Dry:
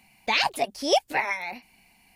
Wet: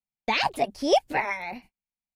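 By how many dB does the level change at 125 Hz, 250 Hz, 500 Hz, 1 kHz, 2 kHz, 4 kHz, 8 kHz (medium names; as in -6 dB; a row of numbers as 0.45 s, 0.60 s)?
+5.5 dB, +3.5 dB, +1.5 dB, +0.5 dB, -2.0 dB, -4.0 dB, -5.5 dB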